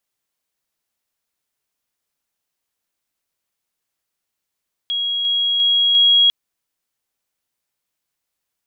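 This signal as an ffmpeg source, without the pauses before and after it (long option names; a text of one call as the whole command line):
ffmpeg -f lavfi -i "aevalsrc='pow(10,(-18.5+3*floor(t/0.35))/20)*sin(2*PI*3300*t)':duration=1.4:sample_rate=44100" out.wav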